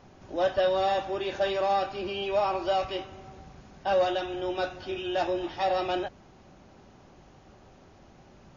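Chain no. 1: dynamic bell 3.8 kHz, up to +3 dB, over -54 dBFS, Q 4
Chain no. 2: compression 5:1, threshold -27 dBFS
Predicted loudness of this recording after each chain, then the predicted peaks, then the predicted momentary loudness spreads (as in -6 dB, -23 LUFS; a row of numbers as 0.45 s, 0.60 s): -28.5 LUFS, -32.5 LUFS; -14.0 dBFS, -20.0 dBFS; 11 LU, 9 LU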